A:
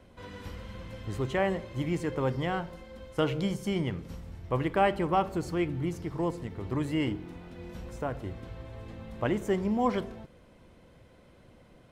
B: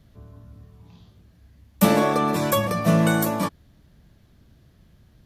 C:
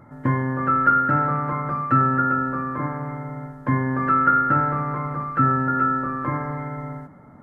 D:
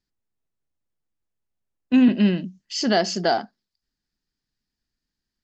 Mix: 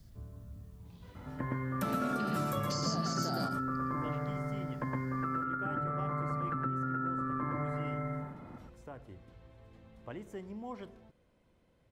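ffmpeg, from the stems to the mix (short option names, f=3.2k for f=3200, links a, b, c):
-filter_complex "[0:a]adelay=850,volume=-13.5dB[a];[1:a]lowshelf=f=140:g=9.5,volume=-8dB,asplit=2[b][c];[c]volume=-11.5dB[d];[2:a]acompressor=threshold=-24dB:ratio=6,adelay=1150,volume=-3dB,asplit=2[e][f];[f]volume=-4.5dB[g];[3:a]acompressor=threshold=-25dB:ratio=6,aexciter=amount=7:drive=3.6:freq=4.2k,volume=0dB,asplit=2[h][i];[i]volume=-10.5dB[j];[a][e]amix=inputs=2:normalize=0,acompressor=threshold=-43dB:ratio=1.5,volume=0dB[k];[b][h]amix=inputs=2:normalize=0,alimiter=limit=-22dB:level=0:latency=1:release=169,volume=0dB[l];[d][g][j]amix=inputs=3:normalize=0,aecho=0:1:114:1[m];[k][l][m]amix=inputs=3:normalize=0,acrossover=split=600|1300|6100[n][o][p][q];[n]acompressor=threshold=-33dB:ratio=4[r];[o]acompressor=threshold=-40dB:ratio=4[s];[p]acompressor=threshold=-43dB:ratio=4[t];[q]acompressor=threshold=-49dB:ratio=4[u];[r][s][t][u]amix=inputs=4:normalize=0"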